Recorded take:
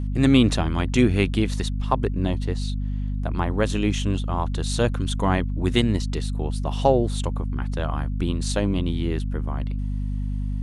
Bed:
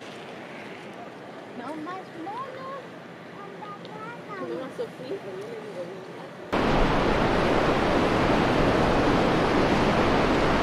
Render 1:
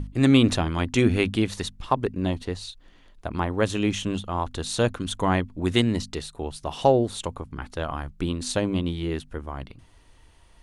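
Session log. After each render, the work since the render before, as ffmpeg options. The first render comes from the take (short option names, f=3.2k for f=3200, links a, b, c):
-af "bandreject=f=50:t=h:w=6,bandreject=f=100:t=h:w=6,bandreject=f=150:t=h:w=6,bandreject=f=200:t=h:w=6,bandreject=f=250:t=h:w=6"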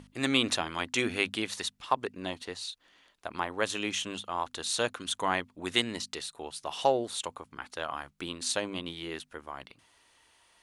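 -af "highpass=f=1.1k:p=1"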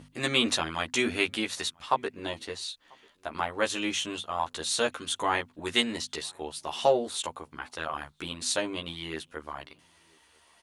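-filter_complex "[0:a]asplit=2[a][b];[b]adelay=13,volume=-2dB[c];[a][c]amix=inputs=2:normalize=0,asplit=2[d][e];[e]adelay=991.3,volume=-29dB,highshelf=f=4k:g=-22.3[f];[d][f]amix=inputs=2:normalize=0"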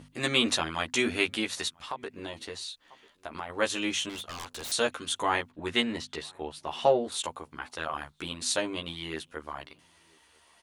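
-filter_complex "[0:a]asettb=1/sr,asplit=3[a][b][c];[a]atrim=end=1.684[d];[b]atrim=start=1.68:end=3.5,asetpts=PTS-STARTPTS,afade=t=in:d=0.004:c=qsin,afade=t=out:st=1.816:d=0.004:c=qsin,acompressor=threshold=-35dB:ratio=2.5:attack=3.2:release=140:knee=1:detection=peak[e];[c]atrim=start=3.496[f];[d][e]acrossfade=d=0.004:c1=hsin:c2=qsin[g];[g][f]acrossfade=d=0.004:c1=qsin:c2=hsin,asettb=1/sr,asplit=3[h][i][j];[h]atrim=end=4.094[k];[i]atrim=start=4.09:end=4.72,asetpts=PTS-STARTPTS,afade=t=in:d=0.004:c=qsin,afade=t=out:st=0.626:d=0.004:c=qsin,aeval=exprs='0.0224*(abs(mod(val(0)/0.0224+3,4)-2)-1)':c=same[l];[j]atrim=start=4.716[m];[k][l]acrossfade=d=0.004:c1=hsin:c2=qsin[n];[n][m]acrossfade=d=0.004:c1=qsin:c2=hsin,asettb=1/sr,asplit=3[o][p][q];[o]atrim=end=5.514[r];[p]atrim=start=5.51:end=7.12,asetpts=PTS-STARTPTS,afade=t=in:d=0.004:c=qsin,afade=t=out:st=1.606:d=0.004:c=qsin,bass=f=250:g=2,treble=f=4k:g=-9[s];[q]atrim=start=7.116[t];[r][s]acrossfade=d=0.004:c1=hsin:c2=qsin[u];[u][t]acrossfade=d=0.004:c1=qsin:c2=hsin"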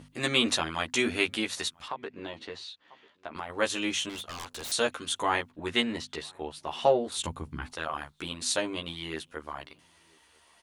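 -filter_complex "[0:a]asettb=1/sr,asplit=3[a][b][c];[a]atrim=end=1.884[d];[b]atrim=start=1.88:end=3.36,asetpts=PTS-STARTPTS,afade=t=in:d=0.004:c=qsin,afade=t=out:st=1.476:d=0.004:c=qsin,highpass=100,lowpass=4k[e];[c]atrim=start=3.356[f];[d][e]acrossfade=d=0.004:c1=hsin:c2=qsin[g];[g][f]acrossfade=d=0.004:c1=qsin:c2=hsin,asplit=3[h][i][j];[h]afade=t=out:st=7.16:d=0.02[k];[i]asubboost=boost=7:cutoff=220,afade=t=in:st=7.16:d=0.02,afade=t=out:st=7.72:d=0.02[l];[j]afade=t=in:st=7.72:d=0.02[m];[k][l][m]amix=inputs=3:normalize=0"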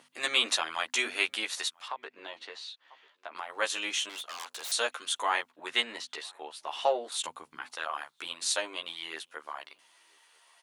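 -af "highpass=670"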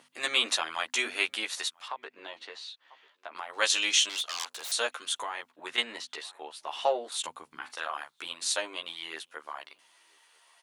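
-filter_complex "[0:a]asettb=1/sr,asplit=3[a][b][c];[a]atrim=end=3.534[d];[b]atrim=start=3.53:end=4.45,asetpts=PTS-STARTPTS,afade=t=in:d=0.004:c=qsin,afade=t=out:st=0.916:d=0.004:c=qsin,equalizer=f=5.1k:w=0.57:g=10.5[e];[c]atrim=start=4.446[f];[d][e]acrossfade=d=0.004:c1=hsin:c2=qsin[g];[g][f]acrossfade=d=0.004:c1=qsin:c2=hsin,asettb=1/sr,asplit=3[h][i][j];[h]atrim=end=5.154[k];[i]atrim=start=5.15:end=5.78,asetpts=PTS-STARTPTS,afade=t=in:d=0.004:c=qsin,afade=t=out:st=0.626:d=0.004:c=qsin,acompressor=threshold=-31dB:ratio=6:attack=3.2:release=140:knee=1:detection=peak[l];[j]atrim=start=5.776[m];[k][l]acrossfade=d=0.004:c1=hsin:c2=qsin[n];[n][m]acrossfade=d=0.004:c1=qsin:c2=hsin,asettb=1/sr,asplit=3[o][p][q];[o]atrim=end=7.474[r];[p]atrim=start=7.47:end=7.96,asetpts=PTS-STARTPTS,afade=t=in:d=0.004:c=qsin,afade=t=out:st=0.486:d=0.004:c=qsin,asplit=2[s][t];[t]adelay=41,volume=-10.5dB[u];[s][u]amix=inputs=2:normalize=0,atrim=end_sample=21609[v];[q]atrim=start=7.956[w];[r][v]acrossfade=d=0.004:c1=hsin:c2=qsin[x];[x][w]acrossfade=d=0.004:c1=qsin:c2=hsin"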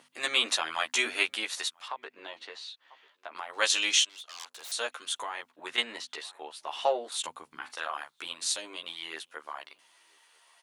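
-filter_complex "[0:a]asettb=1/sr,asplit=3[a][b][c];[a]atrim=end=0.634[d];[b]atrim=start=0.63:end=1.23,asetpts=PTS-STARTPTS,afade=t=in:d=0.004:c=qsin,afade=t=out:st=0.596:d=0.004:c=qsin,asplit=2[e][f];[f]adelay=13,volume=-8dB[g];[e][g]amix=inputs=2:normalize=0,atrim=end_sample=26460[h];[c]atrim=start=1.226[i];[d][h]acrossfade=d=0.004:c1=hsin:c2=qsin[j];[j][i]acrossfade=d=0.004:c1=qsin:c2=hsin,asettb=1/sr,asplit=3[k][l][m];[k]atrim=end=8.384[n];[l]atrim=start=8.38:end=8.84,asetpts=PTS-STARTPTS,afade=t=in:d=0.004:c=qsin,afade=t=out:st=0.456:d=0.004:c=qsin,acrossover=split=380|3000[o][p][q];[p]acompressor=threshold=-42dB:ratio=6:attack=3.2:release=140:knee=2.83:detection=peak[r];[o][r][q]amix=inputs=3:normalize=0[s];[m]atrim=start=8.836[t];[n][s]acrossfade=d=0.004:c1=hsin:c2=qsin[u];[u][t]acrossfade=d=0.004:c1=qsin:c2=hsin,asplit=2[v][w];[v]atrim=end=4.05,asetpts=PTS-STARTPTS,afade=t=out:st=4.046:d=0.004:c=hsin:silence=0.105925[x];[w]atrim=start=4.05,asetpts=PTS-STARTPTS,afade=t=in:d=1.73:c=qsin:silence=0.105925[y];[x][y]concat=n=2:v=0:a=1"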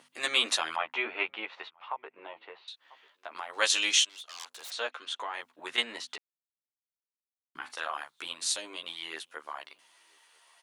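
-filter_complex "[0:a]asettb=1/sr,asplit=3[a][b][c];[a]atrim=end=0.764[d];[b]atrim=start=0.76:end=2.68,asetpts=PTS-STARTPTS,afade=t=in:d=0.004:c=qsin,afade=t=out:st=1.916:d=0.004:c=qsin,highpass=100,equalizer=f=250:t=q:w=4:g=-8,equalizer=f=870:t=q:w=4:g=4,equalizer=f=1.7k:t=q:w=4:g=-7,lowpass=f=2.5k:w=0.5412,lowpass=f=2.5k:w=1.3066[e];[c]atrim=start=2.676[f];[d][e]acrossfade=d=0.004:c1=hsin:c2=qsin[g];[g][f]acrossfade=d=0.004:c1=qsin:c2=hsin,asettb=1/sr,asplit=3[h][i][j];[h]atrim=end=4.704[k];[i]atrim=start=4.7:end=5.34,asetpts=PTS-STARTPTS,afade=t=in:d=0.004:c=qsin,afade=t=out:st=0.636:d=0.004:c=qsin,highpass=210,lowpass=4.2k[l];[j]atrim=start=5.336[m];[k][l]acrossfade=d=0.004:c1=hsin:c2=qsin[n];[n][m]acrossfade=d=0.004:c1=qsin:c2=hsin,asplit=3[o][p][q];[o]atrim=end=6.18,asetpts=PTS-STARTPTS,afade=t=out:st=6.176:d=0.004:c=hsin[r];[p]atrim=start=6.18:end=7.55,asetpts=PTS-STARTPTS,volume=0[s];[q]atrim=start=7.55,asetpts=PTS-STARTPTS,afade=t=in:d=0.004:c=hsin[t];[r][s][t]concat=n=3:v=0:a=1"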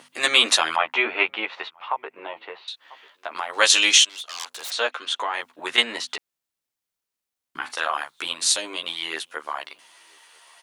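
-af "volume=10dB,alimiter=limit=-2dB:level=0:latency=1"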